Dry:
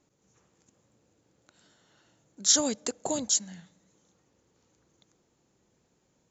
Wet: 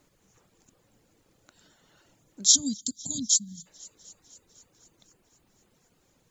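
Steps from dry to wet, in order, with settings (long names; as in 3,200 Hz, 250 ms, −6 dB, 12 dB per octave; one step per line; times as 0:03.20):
delay with a high-pass on its return 251 ms, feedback 68%, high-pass 2,000 Hz, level −21 dB
pitch vibrato 6 Hz 9.3 cents
background noise pink −73 dBFS
gain on a spectral selection 0:02.44–0:03.66, 280–3,100 Hz −29 dB
reverb reduction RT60 0.64 s
level +3.5 dB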